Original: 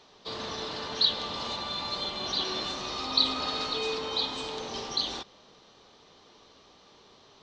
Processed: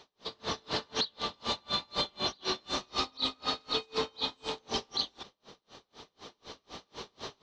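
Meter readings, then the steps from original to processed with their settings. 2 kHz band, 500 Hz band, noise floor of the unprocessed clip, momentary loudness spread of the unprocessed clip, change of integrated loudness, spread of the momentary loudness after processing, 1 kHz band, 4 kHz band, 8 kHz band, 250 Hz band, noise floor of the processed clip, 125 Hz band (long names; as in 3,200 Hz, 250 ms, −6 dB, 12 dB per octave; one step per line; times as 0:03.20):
−2.0 dB, −2.0 dB, −58 dBFS, 11 LU, −4.0 dB, 18 LU, −2.0 dB, −4.5 dB, −1.5 dB, −2.0 dB, −79 dBFS, −1.0 dB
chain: camcorder AGC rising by 7.2 dB per second
brickwall limiter −20.5 dBFS, peak gain reduction 10.5 dB
tremolo with a sine in dB 4 Hz, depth 36 dB
level +2.5 dB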